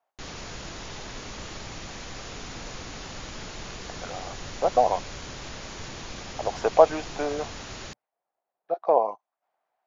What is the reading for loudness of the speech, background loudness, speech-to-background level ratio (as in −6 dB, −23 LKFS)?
−25.0 LKFS, −38.5 LKFS, 13.5 dB